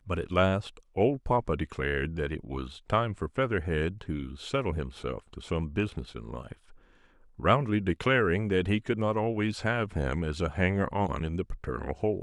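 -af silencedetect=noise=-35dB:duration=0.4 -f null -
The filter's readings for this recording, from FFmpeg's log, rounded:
silence_start: 6.52
silence_end: 7.40 | silence_duration: 0.87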